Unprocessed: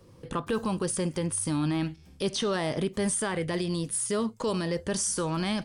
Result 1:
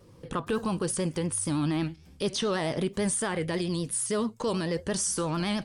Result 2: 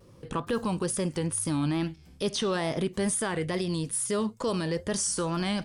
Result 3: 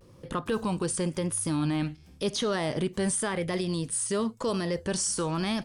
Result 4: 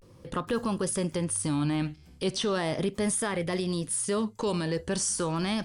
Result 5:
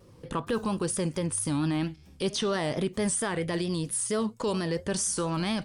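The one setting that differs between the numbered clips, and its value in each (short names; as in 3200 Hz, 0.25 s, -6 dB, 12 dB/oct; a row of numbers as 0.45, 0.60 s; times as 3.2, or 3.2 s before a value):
vibrato, rate: 9, 2.3, 0.94, 0.38, 4.4 Hz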